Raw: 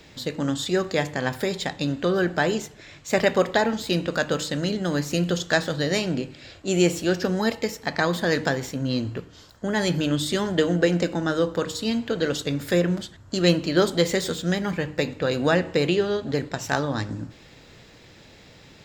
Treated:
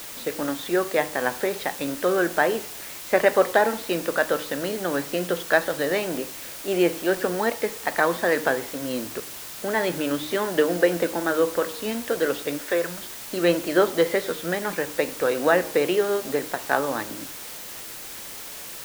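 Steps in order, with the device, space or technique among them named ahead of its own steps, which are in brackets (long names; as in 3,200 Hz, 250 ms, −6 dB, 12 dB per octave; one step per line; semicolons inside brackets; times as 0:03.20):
wax cylinder (band-pass filter 380–2,100 Hz; tape wow and flutter; white noise bed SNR 13 dB)
0:12.57–0:13.01: parametric band 92 Hz → 430 Hz −13 dB 1.5 octaves
level +3.5 dB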